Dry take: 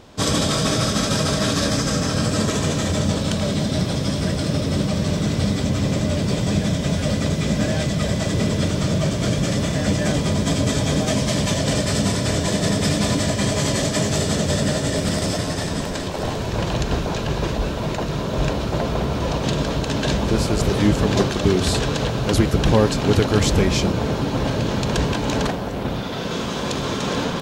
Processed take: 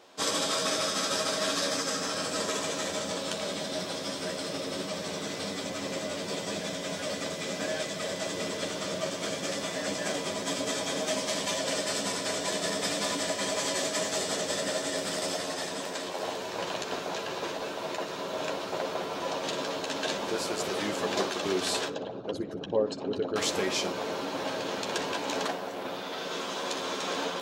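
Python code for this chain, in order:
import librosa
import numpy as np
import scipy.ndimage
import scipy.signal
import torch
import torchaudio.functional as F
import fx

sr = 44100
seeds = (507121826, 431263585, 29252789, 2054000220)

y = fx.envelope_sharpen(x, sr, power=2.0, at=(21.88, 23.36))
y = scipy.signal.sosfilt(scipy.signal.butter(2, 420.0, 'highpass', fs=sr, output='sos'), y)
y = fx.room_early_taps(y, sr, ms=(11, 61), db=(-6.0, -15.0))
y = F.gain(torch.from_numpy(y), -7.0).numpy()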